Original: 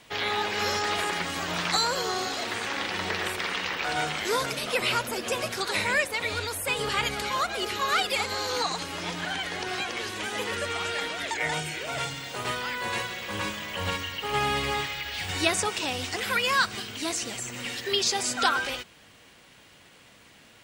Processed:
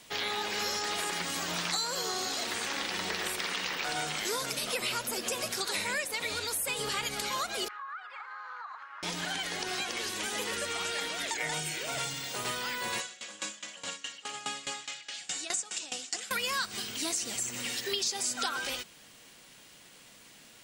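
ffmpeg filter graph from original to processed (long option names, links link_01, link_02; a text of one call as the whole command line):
ffmpeg -i in.wav -filter_complex "[0:a]asettb=1/sr,asplit=3[link_01][link_02][link_03];[link_01]atrim=end=7.684[link_04];[link_02]atrim=start=7.68:end=9.03,asetpts=PTS-STARTPTS,afade=type=in:duration=0.004:curve=qsin,afade=type=out:start_time=1.346:duration=0.004:curve=qsin,asuperpass=centerf=1300:order=4:qfactor=2,acompressor=threshold=-35dB:ratio=6:attack=3.2:release=140:knee=1:detection=peak[link_05];[link_03]atrim=start=9.026[link_06];[link_04][link_05]acrossfade=duration=0.004:curve1=hsin:curve2=qsin[link_07];[link_07][link_06]acrossfade=duration=0.004:curve1=qsin:curve2=hsin,asettb=1/sr,asplit=3[link_08][link_09][link_10];[link_08]atrim=end=13.004[link_11];[link_09]atrim=start=13:end=16.31,asetpts=PTS-STARTPTS,afade=type=in:duration=0.004:curve=qsin,afade=type=out:start_time=3.306:duration=0.004:curve=qsin,highpass=270,equalizer=frequency=410:width_type=q:width=4:gain=-9,equalizer=frequency=960:width_type=q:width=4:gain=-7,equalizer=frequency=2100:width_type=q:width=4:gain=-3,equalizer=frequency=7200:width_type=q:width=4:gain=9,lowpass=frequency=9200:width=0.5412,lowpass=frequency=9200:width=1.3066,aeval=exprs='val(0)*pow(10,-19*if(lt(mod(4.8*n/s,1),2*abs(4.8)/1000),1-mod(4.8*n/s,1)/(2*abs(4.8)/1000),(mod(4.8*n/s,1)-2*abs(4.8)/1000)/(1-2*abs(4.8)/1000))/20)':channel_layout=same[link_12];[link_10]atrim=start=16.306[link_13];[link_11][link_12]acrossfade=duration=0.004:curve1=hsin:curve2=qsin[link_14];[link_14][link_13]acrossfade=duration=0.004:curve1=qsin:curve2=hsin,bass=frequency=250:gain=4,treble=frequency=4000:gain=9,acompressor=threshold=-26dB:ratio=4,equalizer=frequency=81:width_type=o:width=1.1:gain=-12.5,volume=-3.5dB" out.wav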